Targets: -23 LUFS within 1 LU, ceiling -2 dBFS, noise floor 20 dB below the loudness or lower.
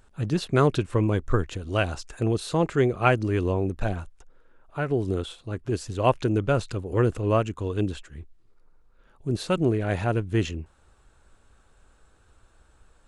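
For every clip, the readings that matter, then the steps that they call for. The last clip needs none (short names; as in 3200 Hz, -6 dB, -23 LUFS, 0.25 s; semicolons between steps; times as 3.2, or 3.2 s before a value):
loudness -26.0 LUFS; peak -5.5 dBFS; loudness target -23.0 LUFS
-> gain +3 dB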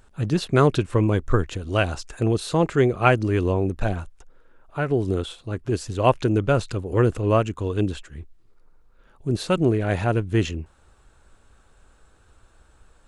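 loudness -23.0 LUFS; peak -2.5 dBFS; noise floor -57 dBFS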